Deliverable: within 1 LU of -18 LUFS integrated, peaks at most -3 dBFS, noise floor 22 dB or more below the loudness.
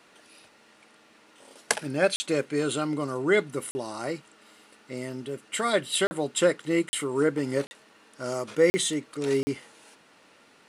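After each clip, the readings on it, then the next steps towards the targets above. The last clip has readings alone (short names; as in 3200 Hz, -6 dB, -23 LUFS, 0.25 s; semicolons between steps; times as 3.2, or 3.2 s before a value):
dropouts 7; longest dropout 40 ms; loudness -27.5 LUFS; peak -7.0 dBFS; loudness target -18.0 LUFS
-> interpolate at 2.16/3.71/6.07/6.89/7.67/8.7/9.43, 40 ms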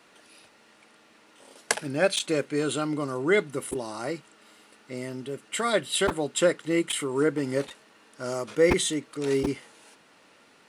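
dropouts 0; loudness -27.0 LUFS; peak -7.0 dBFS; loudness target -18.0 LUFS
-> gain +9 dB; limiter -3 dBFS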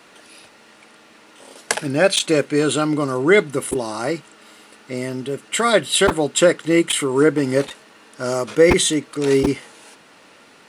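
loudness -18.5 LUFS; peak -3.0 dBFS; noise floor -49 dBFS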